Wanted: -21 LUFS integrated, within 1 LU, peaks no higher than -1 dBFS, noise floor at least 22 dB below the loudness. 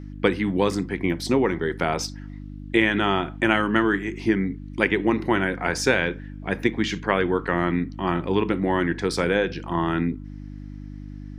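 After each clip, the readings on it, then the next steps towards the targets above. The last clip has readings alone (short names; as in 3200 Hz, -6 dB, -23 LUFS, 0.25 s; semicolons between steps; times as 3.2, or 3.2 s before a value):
hum 50 Hz; harmonics up to 300 Hz; hum level -35 dBFS; loudness -23.5 LUFS; peak -3.0 dBFS; loudness target -21.0 LUFS
-> de-hum 50 Hz, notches 6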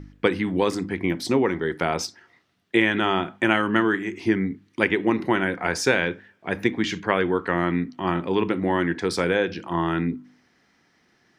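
hum none; loudness -24.0 LUFS; peak -3.0 dBFS; loudness target -21.0 LUFS
-> gain +3 dB; limiter -1 dBFS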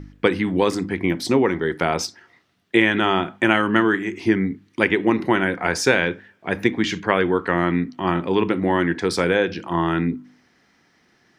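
loudness -21.0 LUFS; peak -1.0 dBFS; noise floor -61 dBFS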